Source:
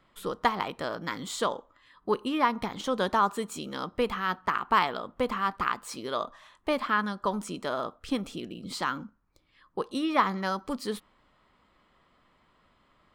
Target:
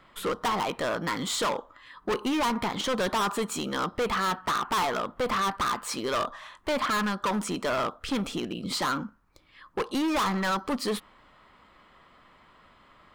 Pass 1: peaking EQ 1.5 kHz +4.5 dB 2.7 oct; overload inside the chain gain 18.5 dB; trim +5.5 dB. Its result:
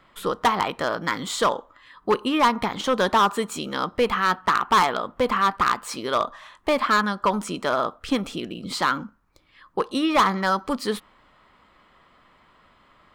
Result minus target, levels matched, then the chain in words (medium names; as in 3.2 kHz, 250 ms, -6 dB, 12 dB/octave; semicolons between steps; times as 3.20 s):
overload inside the chain: distortion -7 dB
peaking EQ 1.5 kHz +4.5 dB 2.7 oct; overload inside the chain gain 29.5 dB; trim +5.5 dB